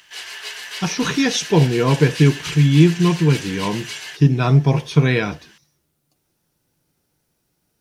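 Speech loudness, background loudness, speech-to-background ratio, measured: -17.5 LUFS, -30.0 LUFS, 12.5 dB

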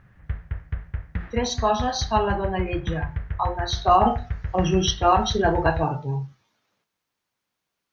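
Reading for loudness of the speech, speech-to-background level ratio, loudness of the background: -23.5 LUFS, 9.0 dB, -32.5 LUFS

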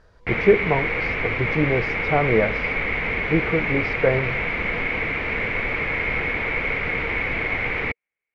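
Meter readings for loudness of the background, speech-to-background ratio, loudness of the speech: -23.5 LUFS, 0.0 dB, -23.5 LUFS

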